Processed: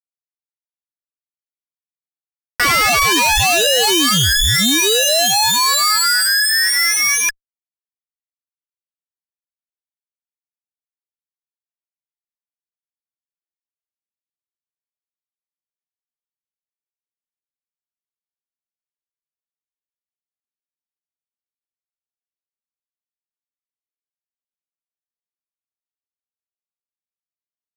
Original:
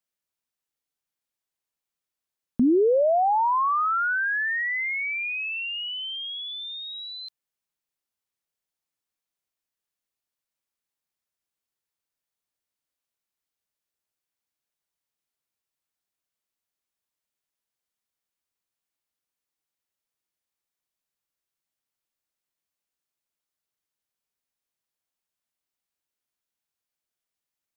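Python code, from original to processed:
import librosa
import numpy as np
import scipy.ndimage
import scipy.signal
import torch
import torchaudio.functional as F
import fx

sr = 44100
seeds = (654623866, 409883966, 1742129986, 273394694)

y = fx.lower_of_two(x, sr, delay_ms=5.1)
y = y * np.sin(2.0 * np.pi * 1700.0 * np.arange(len(y)) / sr)
y = fx.fuzz(y, sr, gain_db=53.0, gate_db=-55.0)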